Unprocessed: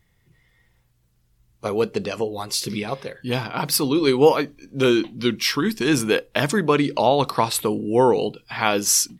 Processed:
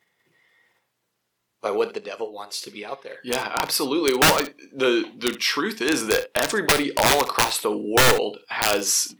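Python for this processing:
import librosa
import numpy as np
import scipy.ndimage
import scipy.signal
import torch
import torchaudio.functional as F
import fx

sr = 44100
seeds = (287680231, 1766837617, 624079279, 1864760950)

p1 = scipy.signal.sosfilt(scipy.signal.butter(2, 410.0, 'highpass', fs=sr, output='sos'), x)
p2 = fx.high_shelf(p1, sr, hz=5200.0, db=-7.0)
p3 = fx.level_steps(p2, sr, step_db=18)
p4 = p2 + F.gain(torch.from_numpy(p3), -1.0).numpy()
p5 = (np.mod(10.0 ** (9.5 / 20.0) * p4 + 1.0, 2.0) - 1.0) / 10.0 ** (9.5 / 20.0)
p6 = p5 + fx.room_early_taps(p5, sr, ms=(29, 60, 70), db=(-15.0, -17.5, -16.5), dry=0)
y = fx.upward_expand(p6, sr, threshold_db=-34.0, expansion=1.5, at=(1.94, 3.09), fade=0.02)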